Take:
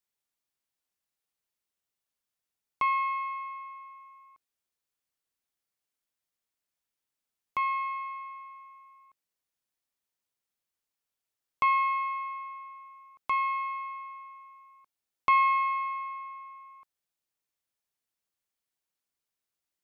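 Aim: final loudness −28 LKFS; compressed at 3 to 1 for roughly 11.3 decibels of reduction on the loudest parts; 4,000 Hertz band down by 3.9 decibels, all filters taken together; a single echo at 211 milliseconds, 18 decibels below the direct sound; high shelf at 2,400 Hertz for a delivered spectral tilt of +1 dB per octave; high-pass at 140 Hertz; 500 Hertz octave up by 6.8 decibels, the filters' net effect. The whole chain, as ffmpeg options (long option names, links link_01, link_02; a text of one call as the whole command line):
ffmpeg -i in.wav -af "highpass=140,equalizer=frequency=500:width_type=o:gain=8.5,highshelf=frequency=2400:gain=4,equalizer=frequency=4000:width_type=o:gain=-9,acompressor=threshold=-34dB:ratio=3,aecho=1:1:211:0.126,volume=7.5dB" out.wav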